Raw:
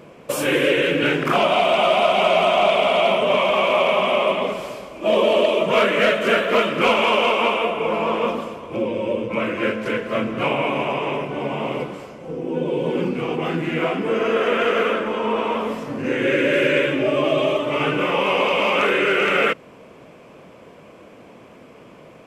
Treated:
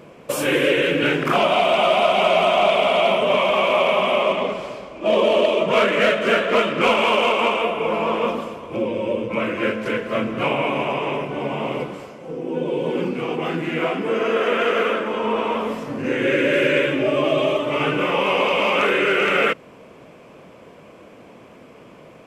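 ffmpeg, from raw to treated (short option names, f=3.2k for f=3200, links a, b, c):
-filter_complex "[0:a]asettb=1/sr,asplit=3[a][b][c];[a]atrim=end=4.234[d];[b]atrim=start=4.23:end=7.62,asetpts=PTS-STARTPTS,afade=t=in:d=0.004:c=qsin,afade=t=out:st=3.386:d=0.004:c=qsin,adynamicsmooth=sensitivity=3:basefreq=6.4k[e];[c]atrim=start=7.616[f];[d][e]acrossfade=d=0.004:c1=hsin:c2=qsin[g];[g][f]acrossfade=d=0.004:c1=qsin:c2=hsin,asettb=1/sr,asplit=3[h][i][j];[h]atrim=end=12.094[k];[i]atrim=start=12.09:end=15.14,asetpts=PTS-STARTPTS,afade=t=in:d=0.004:c=qsin,afade=t=out:st=3.046:d=0.004:c=qsin,highpass=f=150:p=1[l];[j]atrim=start=15.136[m];[k][l]acrossfade=d=0.004:c1=hsin:c2=qsin[n];[n][m]acrossfade=d=0.004:c1=qsin:c2=hsin"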